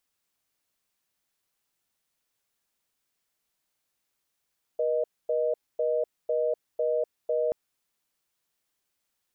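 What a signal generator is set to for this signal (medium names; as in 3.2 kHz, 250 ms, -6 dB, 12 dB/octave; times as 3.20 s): call progress tone reorder tone, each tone -26 dBFS 2.73 s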